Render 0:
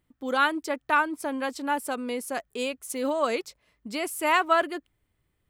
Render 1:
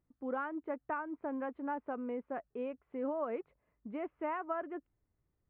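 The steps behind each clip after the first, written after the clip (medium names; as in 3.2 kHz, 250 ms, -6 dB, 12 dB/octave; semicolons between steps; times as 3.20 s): compression, threshold -24 dBFS, peak gain reduction 8 dB; Gaussian low-pass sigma 5.3 samples; trim -6.5 dB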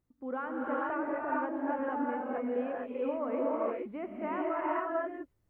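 gated-style reverb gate 480 ms rising, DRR -4.5 dB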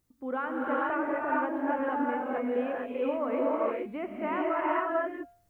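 treble shelf 2.7 kHz +10 dB; de-hum 233.1 Hz, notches 29; trim +3 dB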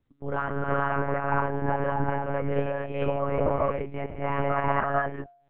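monotone LPC vocoder at 8 kHz 140 Hz; trim +3.5 dB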